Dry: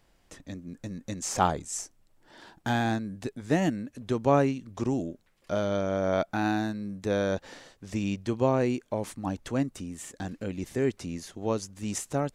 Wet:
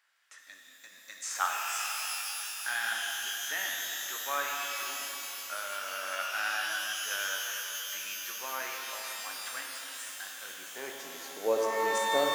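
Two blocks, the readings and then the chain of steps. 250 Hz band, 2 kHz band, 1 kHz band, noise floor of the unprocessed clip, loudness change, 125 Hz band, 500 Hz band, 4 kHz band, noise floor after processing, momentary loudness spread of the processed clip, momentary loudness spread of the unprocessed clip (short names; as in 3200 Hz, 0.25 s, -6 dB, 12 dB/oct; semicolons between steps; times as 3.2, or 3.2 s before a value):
-21.0 dB, +5.5 dB, -2.5 dB, -66 dBFS, -3.0 dB, under -30 dB, -7.0 dB, +8.5 dB, -55 dBFS, 11 LU, 14 LU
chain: high-pass sweep 1500 Hz -> 470 Hz, 10.25–11.5; shimmer reverb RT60 3.8 s, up +12 st, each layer -2 dB, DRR -0.5 dB; gain -5.5 dB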